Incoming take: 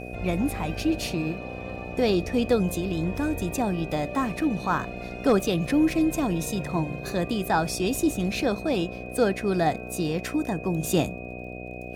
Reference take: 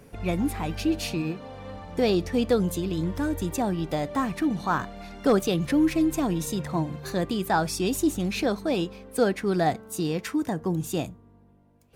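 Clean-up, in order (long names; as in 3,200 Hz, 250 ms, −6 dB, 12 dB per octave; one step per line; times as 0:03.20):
click removal
hum removal 61.3 Hz, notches 12
notch filter 2,500 Hz, Q 30
level 0 dB, from 0:10.83 −5.5 dB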